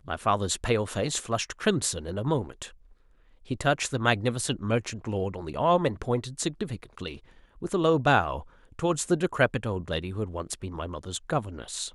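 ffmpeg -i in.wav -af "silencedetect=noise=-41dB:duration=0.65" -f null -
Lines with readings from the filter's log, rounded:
silence_start: 2.69
silence_end: 3.48 | silence_duration: 0.79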